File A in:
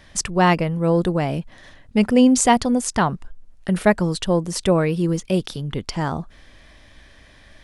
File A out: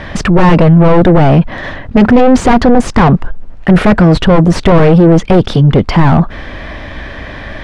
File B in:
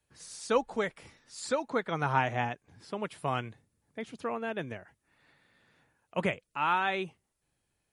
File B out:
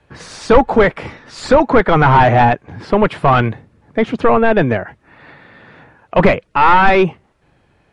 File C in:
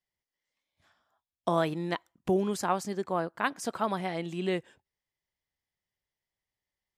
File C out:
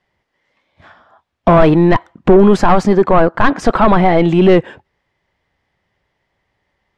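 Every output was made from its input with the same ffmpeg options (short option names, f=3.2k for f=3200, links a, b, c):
-filter_complex "[0:a]asplit=2[a][b];[b]highpass=f=720:p=1,volume=30dB,asoftclip=type=tanh:threshold=-2.5dB[c];[a][c]amix=inputs=2:normalize=0,lowpass=f=2.2k:p=1,volume=-6dB,aemphasis=mode=reproduction:type=riaa,acontrast=47,volume=-1dB"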